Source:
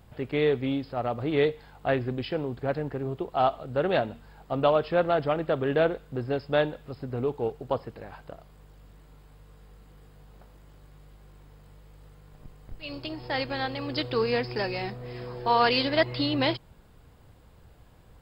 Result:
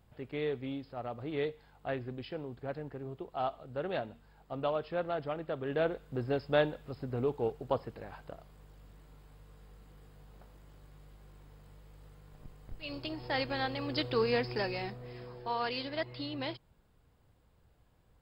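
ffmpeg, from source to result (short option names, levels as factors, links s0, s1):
-af "volume=0.668,afade=t=in:st=5.61:d=0.6:silence=0.446684,afade=t=out:st=14.47:d=1.1:silence=0.354813"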